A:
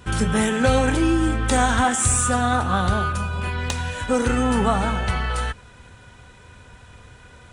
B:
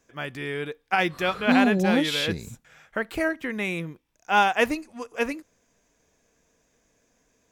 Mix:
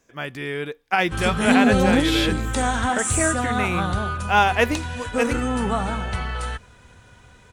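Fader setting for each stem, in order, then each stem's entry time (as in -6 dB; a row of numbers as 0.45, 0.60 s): -3.5, +2.5 dB; 1.05, 0.00 s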